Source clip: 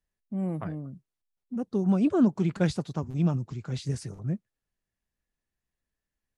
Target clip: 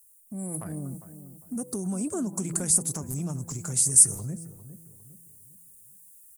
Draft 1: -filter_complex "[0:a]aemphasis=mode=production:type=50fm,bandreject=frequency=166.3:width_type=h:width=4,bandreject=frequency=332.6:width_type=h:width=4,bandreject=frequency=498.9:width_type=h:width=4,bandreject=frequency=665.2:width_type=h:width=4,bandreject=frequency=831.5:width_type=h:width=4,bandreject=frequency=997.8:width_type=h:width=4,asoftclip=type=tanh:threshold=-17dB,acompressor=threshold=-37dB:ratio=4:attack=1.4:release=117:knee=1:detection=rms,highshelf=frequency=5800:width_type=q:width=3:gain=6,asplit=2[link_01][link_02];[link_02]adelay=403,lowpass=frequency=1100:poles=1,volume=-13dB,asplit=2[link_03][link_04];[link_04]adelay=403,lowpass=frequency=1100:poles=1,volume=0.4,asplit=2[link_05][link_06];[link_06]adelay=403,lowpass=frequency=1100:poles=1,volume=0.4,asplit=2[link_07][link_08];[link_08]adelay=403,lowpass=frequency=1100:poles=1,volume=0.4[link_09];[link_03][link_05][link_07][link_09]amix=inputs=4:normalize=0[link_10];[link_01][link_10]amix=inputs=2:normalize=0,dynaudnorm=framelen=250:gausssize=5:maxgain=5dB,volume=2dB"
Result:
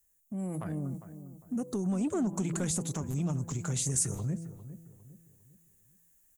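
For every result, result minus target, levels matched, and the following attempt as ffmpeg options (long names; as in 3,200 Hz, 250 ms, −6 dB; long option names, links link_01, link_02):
soft clipping: distortion +21 dB; 8,000 Hz band −3.5 dB
-filter_complex "[0:a]aemphasis=mode=production:type=50fm,bandreject=frequency=166.3:width_type=h:width=4,bandreject=frequency=332.6:width_type=h:width=4,bandreject=frequency=498.9:width_type=h:width=4,bandreject=frequency=665.2:width_type=h:width=4,bandreject=frequency=831.5:width_type=h:width=4,bandreject=frequency=997.8:width_type=h:width=4,asoftclip=type=tanh:threshold=-5dB,acompressor=threshold=-37dB:ratio=4:attack=1.4:release=117:knee=1:detection=rms,highshelf=frequency=5800:width_type=q:width=3:gain=6,asplit=2[link_01][link_02];[link_02]adelay=403,lowpass=frequency=1100:poles=1,volume=-13dB,asplit=2[link_03][link_04];[link_04]adelay=403,lowpass=frequency=1100:poles=1,volume=0.4,asplit=2[link_05][link_06];[link_06]adelay=403,lowpass=frequency=1100:poles=1,volume=0.4,asplit=2[link_07][link_08];[link_08]adelay=403,lowpass=frequency=1100:poles=1,volume=0.4[link_09];[link_03][link_05][link_07][link_09]amix=inputs=4:normalize=0[link_10];[link_01][link_10]amix=inputs=2:normalize=0,dynaudnorm=framelen=250:gausssize=5:maxgain=5dB,volume=2dB"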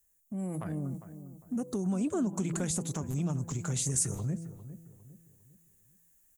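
8,000 Hz band −3.5 dB
-filter_complex "[0:a]aemphasis=mode=production:type=50fm,bandreject=frequency=166.3:width_type=h:width=4,bandreject=frequency=332.6:width_type=h:width=4,bandreject=frequency=498.9:width_type=h:width=4,bandreject=frequency=665.2:width_type=h:width=4,bandreject=frequency=831.5:width_type=h:width=4,bandreject=frequency=997.8:width_type=h:width=4,asoftclip=type=tanh:threshold=-5dB,acompressor=threshold=-37dB:ratio=4:attack=1.4:release=117:knee=1:detection=rms,highshelf=frequency=5800:width_type=q:width=3:gain=18,asplit=2[link_01][link_02];[link_02]adelay=403,lowpass=frequency=1100:poles=1,volume=-13dB,asplit=2[link_03][link_04];[link_04]adelay=403,lowpass=frequency=1100:poles=1,volume=0.4,asplit=2[link_05][link_06];[link_06]adelay=403,lowpass=frequency=1100:poles=1,volume=0.4,asplit=2[link_07][link_08];[link_08]adelay=403,lowpass=frequency=1100:poles=1,volume=0.4[link_09];[link_03][link_05][link_07][link_09]amix=inputs=4:normalize=0[link_10];[link_01][link_10]amix=inputs=2:normalize=0,dynaudnorm=framelen=250:gausssize=5:maxgain=5dB,volume=2dB"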